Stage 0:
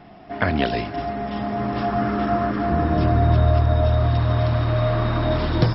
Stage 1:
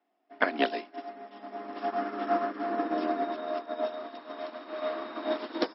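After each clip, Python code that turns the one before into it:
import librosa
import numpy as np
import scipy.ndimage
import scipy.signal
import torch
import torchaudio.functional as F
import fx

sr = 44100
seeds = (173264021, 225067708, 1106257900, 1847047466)

y = scipy.signal.sosfilt(scipy.signal.butter(8, 250.0, 'highpass', fs=sr, output='sos'), x)
y = fx.upward_expand(y, sr, threshold_db=-38.0, expansion=2.5)
y = y * librosa.db_to_amplitude(-1.5)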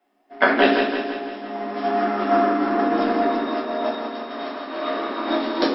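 y = fx.echo_feedback(x, sr, ms=167, feedback_pct=56, wet_db=-6.5)
y = fx.room_shoebox(y, sr, seeds[0], volume_m3=69.0, walls='mixed', distance_m=1.1)
y = y * librosa.db_to_amplitude(5.5)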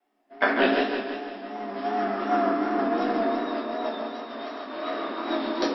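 y = fx.vibrato(x, sr, rate_hz=2.7, depth_cents=57.0)
y = y + 10.0 ** (-8.5 / 20.0) * np.pad(y, (int(140 * sr / 1000.0), 0))[:len(y)]
y = y * librosa.db_to_amplitude(-5.5)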